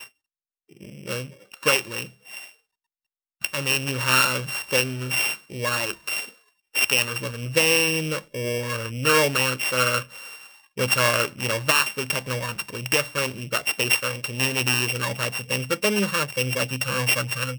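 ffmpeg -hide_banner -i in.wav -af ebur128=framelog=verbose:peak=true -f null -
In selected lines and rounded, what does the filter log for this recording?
Integrated loudness:
  I:         -22.6 LUFS
  Threshold: -33.2 LUFS
Loudness range:
  LRA:         2.8 LU
  Threshold: -43.1 LUFS
  LRA low:   -24.3 LUFS
  LRA high:  -21.5 LUFS
True peak:
  Peak:       -5.0 dBFS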